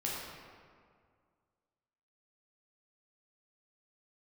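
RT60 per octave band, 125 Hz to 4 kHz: 2.2 s, 2.2 s, 2.0 s, 2.0 s, 1.6 s, 1.1 s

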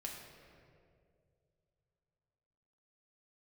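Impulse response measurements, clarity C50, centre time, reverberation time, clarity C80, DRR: 2.5 dB, 74 ms, 2.4 s, 4.0 dB, -1.5 dB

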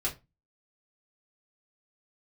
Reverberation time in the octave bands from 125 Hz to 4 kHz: 0.35 s, 0.35 s, 0.25 s, 0.25 s, 0.20 s, 0.20 s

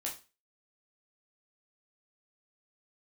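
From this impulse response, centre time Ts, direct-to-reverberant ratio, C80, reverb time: 22 ms, -3.0 dB, 16.5 dB, 0.30 s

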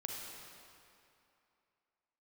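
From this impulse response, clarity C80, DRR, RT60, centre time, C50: 1.5 dB, -0.5 dB, 2.7 s, 123 ms, 0.0 dB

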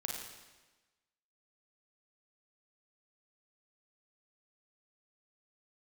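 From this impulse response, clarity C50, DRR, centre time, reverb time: 0.5 dB, -1.0 dB, 65 ms, 1.2 s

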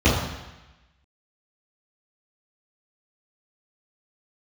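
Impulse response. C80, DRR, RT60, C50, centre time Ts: 5.0 dB, -13.5 dB, 1.0 s, 2.0 dB, 60 ms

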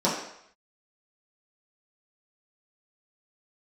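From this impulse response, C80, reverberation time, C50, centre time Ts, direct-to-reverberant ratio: 6.5 dB, 0.70 s, 4.0 dB, 45 ms, -8.5 dB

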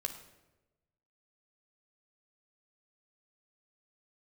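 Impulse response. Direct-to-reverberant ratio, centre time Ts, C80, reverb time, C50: 4.5 dB, 16 ms, 11.5 dB, 1.1 s, 9.0 dB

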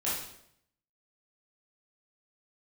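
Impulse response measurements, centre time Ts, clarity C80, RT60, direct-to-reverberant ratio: 56 ms, 5.5 dB, 0.75 s, -9.0 dB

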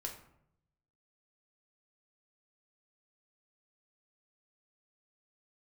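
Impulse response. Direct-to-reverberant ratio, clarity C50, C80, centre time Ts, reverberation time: 1.0 dB, 8.5 dB, 11.5 dB, 20 ms, 0.75 s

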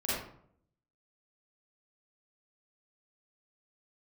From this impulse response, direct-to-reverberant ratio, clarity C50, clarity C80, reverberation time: -10.0 dB, -3.0 dB, 2.5 dB, 0.65 s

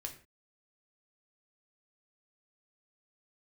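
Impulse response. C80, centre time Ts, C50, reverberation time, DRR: 15.0 dB, 12 ms, 10.5 dB, no single decay rate, 3.0 dB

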